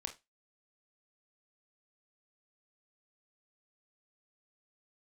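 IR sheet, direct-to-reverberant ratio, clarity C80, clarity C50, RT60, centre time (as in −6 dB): 4.5 dB, 23.5 dB, 13.0 dB, non-exponential decay, 10 ms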